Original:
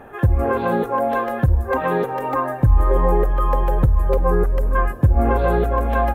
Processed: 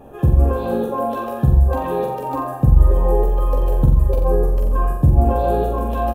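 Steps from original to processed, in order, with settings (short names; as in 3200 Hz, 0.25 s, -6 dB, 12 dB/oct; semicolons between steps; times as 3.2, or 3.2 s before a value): bell 1600 Hz -15 dB 1.1 oct; notch 2100 Hz, Q 7.4; doubler 14 ms -6.5 dB; on a send: flutter echo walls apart 7.6 m, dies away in 0.63 s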